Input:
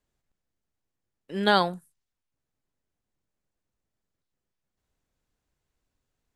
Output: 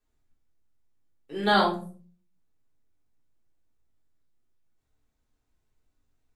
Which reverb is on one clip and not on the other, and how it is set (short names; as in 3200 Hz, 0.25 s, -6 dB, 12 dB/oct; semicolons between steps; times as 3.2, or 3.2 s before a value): shoebox room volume 260 m³, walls furnished, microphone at 3.6 m; gain -6.5 dB